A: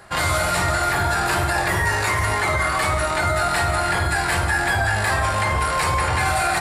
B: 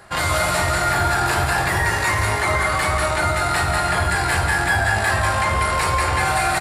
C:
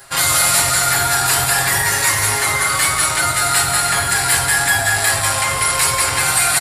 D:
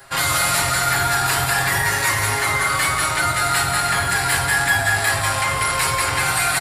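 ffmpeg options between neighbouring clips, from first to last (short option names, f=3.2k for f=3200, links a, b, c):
-af "aecho=1:1:191:0.562"
-af "aecho=1:1:7.3:0.69,crystalizer=i=5.5:c=0,volume=-4dB"
-filter_complex "[0:a]equalizer=f=9.2k:w=0.43:g=-8,acrossover=split=420|710|3100[a][b][c][d];[b]alimiter=level_in=6.5dB:limit=-24dB:level=0:latency=1,volume=-6.5dB[e];[a][e][c][d]amix=inputs=4:normalize=0"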